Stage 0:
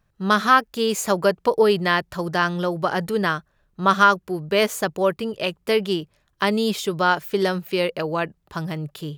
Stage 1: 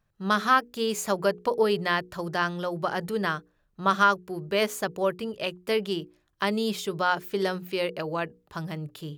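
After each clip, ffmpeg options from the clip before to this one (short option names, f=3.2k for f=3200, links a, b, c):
-af "bandreject=f=60:t=h:w=6,bandreject=f=120:t=h:w=6,bandreject=f=180:t=h:w=6,bandreject=f=240:t=h:w=6,bandreject=f=300:t=h:w=6,bandreject=f=360:t=h:w=6,bandreject=f=420:t=h:w=6,bandreject=f=480:t=h:w=6,volume=-5.5dB"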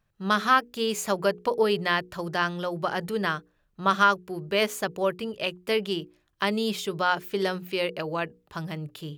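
-af "equalizer=f=2.7k:w=1.5:g=3"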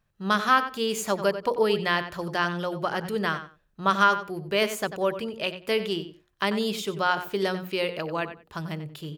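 -filter_complex "[0:a]asplit=2[a][b];[b]adelay=92,lowpass=f=4.2k:p=1,volume=-11dB,asplit=2[c][d];[d]adelay=92,lowpass=f=4.2k:p=1,volume=0.18[e];[a][c][e]amix=inputs=3:normalize=0"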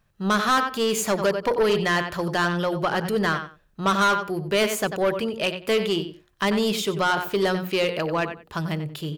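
-af "asoftclip=type=tanh:threshold=-22dB,volume=6.5dB"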